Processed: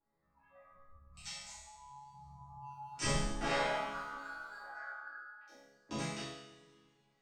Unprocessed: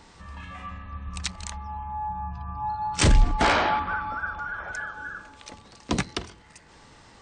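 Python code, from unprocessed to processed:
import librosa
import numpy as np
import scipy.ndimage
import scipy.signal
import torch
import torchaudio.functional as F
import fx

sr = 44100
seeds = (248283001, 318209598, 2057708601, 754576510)

y = fx.wiener(x, sr, points=15)
y = fx.noise_reduce_blind(y, sr, reduce_db=16)
y = fx.cabinet(y, sr, low_hz=450.0, low_slope=12, high_hz=3500.0, hz=(490.0, 750.0, 1100.0, 1600.0, 3200.0), db=(-10, 5, 9, 4, -4), at=(4.66, 5.47))
y = fx.resonator_bank(y, sr, root=49, chord='minor', decay_s=0.79)
y = fx.rev_double_slope(y, sr, seeds[0], early_s=0.53, late_s=2.3, knee_db=-20, drr_db=-9.5)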